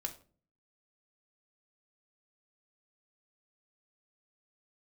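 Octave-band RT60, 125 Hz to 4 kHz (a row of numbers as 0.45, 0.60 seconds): 0.70, 0.65, 0.50, 0.35, 0.30, 0.30 seconds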